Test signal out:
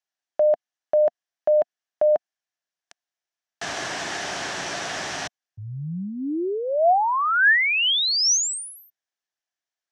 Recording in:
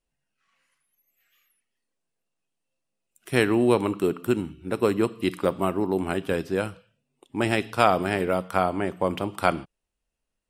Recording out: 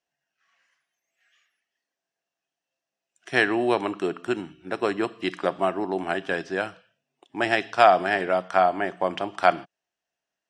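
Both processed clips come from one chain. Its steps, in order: speaker cabinet 200–7300 Hz, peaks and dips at 230 Hz -7 dB, 480 Hz -5 dB, 700 Hz +9 dB, 1700 Hz +9 dB, 3100 Hz +3 dB, 5800 Hz +6 dB; gain -1 dB

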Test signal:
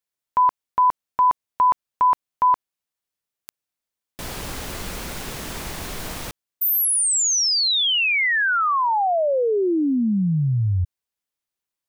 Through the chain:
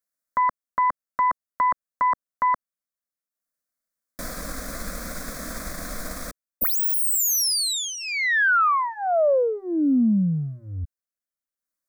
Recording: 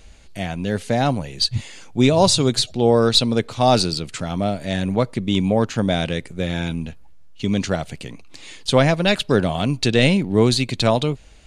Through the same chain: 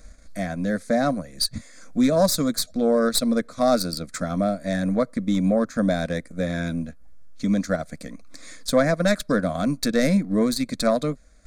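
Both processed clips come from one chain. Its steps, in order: self-modulated delay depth 0.054 ms; transient shaper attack +2 dB, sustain -7 dB; in parallel at +2.5 dB: limiter -12 dBFS; on the sum: fixed phaser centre 580 Hz, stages 8; gain -5.5 dB

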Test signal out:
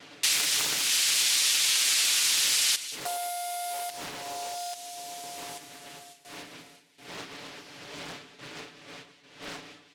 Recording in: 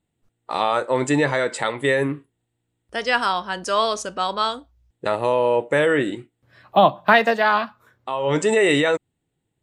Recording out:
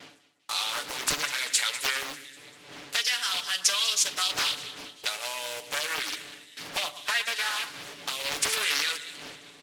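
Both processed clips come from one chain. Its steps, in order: CVSD 64 kbps; wind noise 300 Hz -30 dBFS; gate with hold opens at -34 dBFS; in parallel at -9.5 dB: hard clip -20 dBFS; on the sum: weighting filter D; compressor 6:1, threshold -26 dBFS; pre-emphasis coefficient 0.97; comb 6.9 ms, depth 86%; on a send: split-band echo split 2100 Hz, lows 0.118 s, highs 0.197 s, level -14 dB; on the sum: Doppler distortion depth 0.78 ms; gain +8 dB

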